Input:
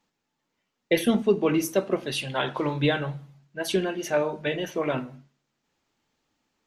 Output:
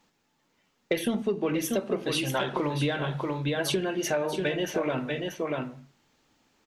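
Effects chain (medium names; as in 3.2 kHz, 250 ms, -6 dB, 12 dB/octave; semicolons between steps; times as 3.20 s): delay 638 ms -9.5 dB; in parallel at -5.5 dB: saturation -18 dBFS, distortion -13 dB; on the sum: compression 6:1, threshold -29 dBFS, peak gain reduction 15 dB; trim +4 dB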